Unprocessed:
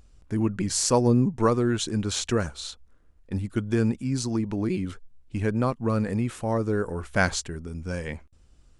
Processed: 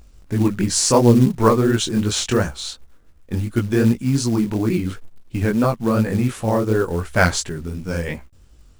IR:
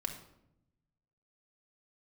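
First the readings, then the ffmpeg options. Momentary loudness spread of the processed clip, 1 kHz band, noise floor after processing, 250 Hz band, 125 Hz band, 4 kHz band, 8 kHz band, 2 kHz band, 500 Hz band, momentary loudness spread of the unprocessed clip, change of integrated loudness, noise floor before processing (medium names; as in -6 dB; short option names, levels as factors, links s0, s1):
14 LU, +7.0 dB, -49 dBFS, +7.0 dB, +7.0 dB, +7.0 dB, +6.5 dB, +6.5 dB, +7.0 dB, 13 LU, +7.0 dB, -57 dBFS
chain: -af "flanger=delay=16.5:depth=7.1:speed=2.8,acontrast=46,acrusher=bits=6:mode=log:mix=0:aa=0.000001,volume=1.58"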